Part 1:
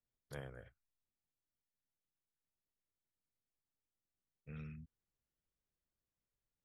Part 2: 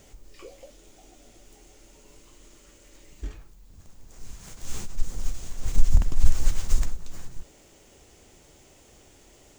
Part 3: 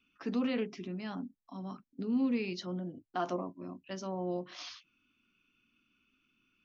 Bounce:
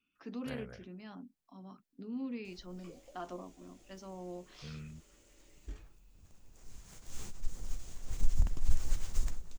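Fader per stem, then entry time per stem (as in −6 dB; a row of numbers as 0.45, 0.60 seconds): +2.5, −10.0, −9.0 decibels; 0.15, 2.45, 0.00 seconds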